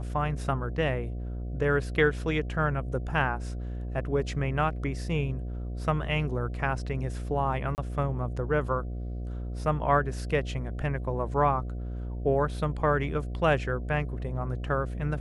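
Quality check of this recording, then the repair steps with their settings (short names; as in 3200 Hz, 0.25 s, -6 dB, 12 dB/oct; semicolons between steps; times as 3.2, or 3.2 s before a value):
buzz 60 Hz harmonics 12 -34 dBFS
7.75–7.78 gap 29 ms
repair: de-hum 60 Hz, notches 12; interpolate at 7.75, 29 ms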